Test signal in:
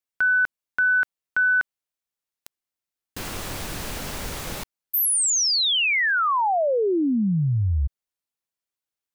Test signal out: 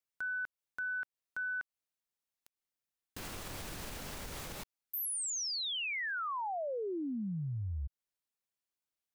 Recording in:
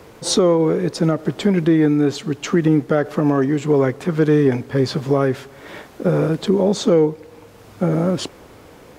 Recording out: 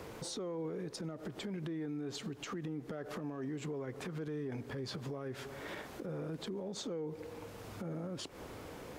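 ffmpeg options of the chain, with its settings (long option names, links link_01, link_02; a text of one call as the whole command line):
ffmpeg -i in.wav -af "alimiter=limit=-16.5dB:level=0:latency=1:release=107,acompressor=threshold=-31dB:ratio=10:attack=0.1:release=269:knee=6:detection=peak,volume=-4dB" out.wav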